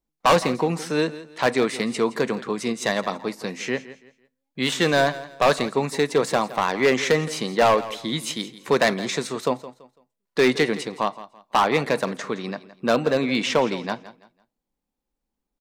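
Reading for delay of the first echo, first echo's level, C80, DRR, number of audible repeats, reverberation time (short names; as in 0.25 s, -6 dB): 0.167 s, -16.0 dB, none, none, 2, none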